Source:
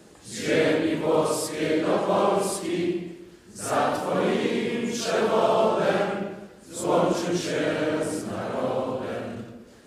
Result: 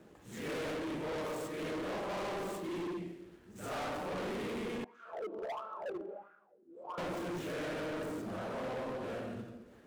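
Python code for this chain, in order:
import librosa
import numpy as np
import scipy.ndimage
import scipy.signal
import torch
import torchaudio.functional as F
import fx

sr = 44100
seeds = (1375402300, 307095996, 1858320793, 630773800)

y = scipy.signal.medfilt(x, 9)
y = fx.wah_lfo(y, sr, hz=1.5, low_hz=330.0, high_hz=1400.0, q=7.8, at=(4.84, 6.98))
y = np.clip(10.0 ** (29.5 / 20.0) * y, -1.0, 1.0) / 10.0 ** (29.5 / 20.0)
y = F.gain(torch.from_numpy(y), -7.0).numpy()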